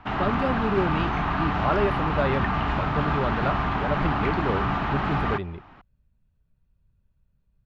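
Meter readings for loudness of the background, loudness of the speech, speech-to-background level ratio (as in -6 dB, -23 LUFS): -26.0 LUFS, -29.5 LUFS, -3.5 dB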